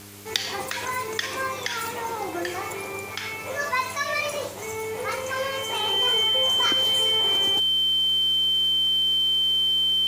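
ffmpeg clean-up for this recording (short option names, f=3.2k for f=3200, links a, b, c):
-af "adeclick=t=4,bandreject=f=100.7:t=h:w=4,bandreject=f=201.4:t=h:w=4,bandreject=f=302.1:t=h:w=4,bandreject=f=402.8:t=h:w=4,bandreject=f=3.1k:w=30,afwtdn=0.0056"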